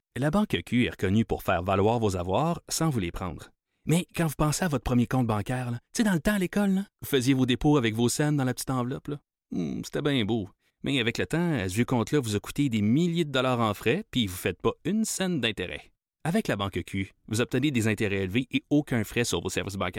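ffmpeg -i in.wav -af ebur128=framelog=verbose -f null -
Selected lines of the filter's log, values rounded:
Integrated loudness:
  I:         -27.1 LUFS
  Threshold: -37.3 LUFS
Loudness range:
  LRA:         3.3 LU
  Threshold: -47.4 LUFS
  LRA low:   -29.1 LUFS
  LRA high:  -25.8 LUFS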